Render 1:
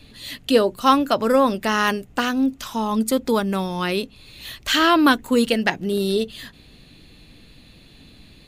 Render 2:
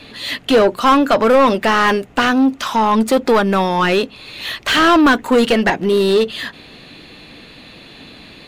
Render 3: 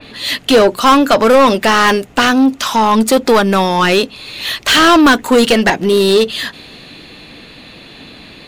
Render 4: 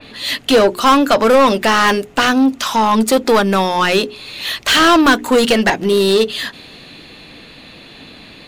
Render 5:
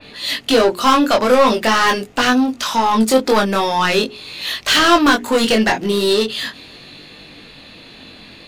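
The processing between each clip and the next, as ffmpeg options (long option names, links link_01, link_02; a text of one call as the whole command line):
ffmpeg -i in.wav -filter_complex "[0:a]asplit=2[link_01][link_02];[link_02]highpass=frequency=720:poles=1,volume=24dB,asoftclip=type=tanh:threshold=-3dB[link_03];[link_01][link_03]amix=inputs=2:normalize=0,lowpass=frequency=1700:poles=1,volume=-6dB" out.wav
ffmpeg -i in.wav -af "adynamicequalizer=threshold=0.0282:dfrequency=3500:dqfactor=0.7:tfrequency=3500:tqfactor=0.7:attack=5:release=100:ratio=0.375:range=3.5:mode=boostabove:tftype=highshelf,volume=3dB" out.wav
ffmpeg -i in.wav -af "bandreject=frequency=60:width_type=h:width=6,bandreject=frequency=120:width_type=h:width=6,bandreject=frequency=180:width_type=h:width=6,bandreject=frequency=240:width_type=h:width=6,bandreject=frequency=300:width_type=h:width=6,bandreject=frequency=360:width_type=h:width=6,bandreject=frequency=420:width_type=h:width=6,volume=-2dB" out.wav
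ffmpeg -i in.wav -af "flanger=delay=20:depth=3.9:speed=0.42,equalizer=frequency=4900:width_type=o:width=0.77:gain=2.5,volume=1dB" out.wav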